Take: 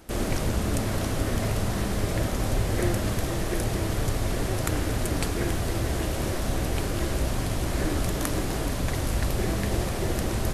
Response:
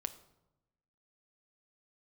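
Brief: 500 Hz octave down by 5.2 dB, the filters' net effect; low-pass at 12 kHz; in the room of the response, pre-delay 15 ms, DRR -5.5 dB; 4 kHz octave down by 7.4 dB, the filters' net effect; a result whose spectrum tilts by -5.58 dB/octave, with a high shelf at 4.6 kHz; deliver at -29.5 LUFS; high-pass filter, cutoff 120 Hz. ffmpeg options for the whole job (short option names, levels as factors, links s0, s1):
-filter_complex "[0:a]highpass=120,lowpass=12000,equalizer=f=500:t=o:g=-7,equalizer=f=4000:t=o:g=-7,highshelf=f=4600:g=-5,asplit=2[s0][s1];[1:a]atrim=start_sample=2205,adelay=15[s2];[s1][s2]afir=irnorm=-1:irlink=0,volume=2.11[s3];[s0][s3]amix=inputs=2:normalize=0,volume=0.631"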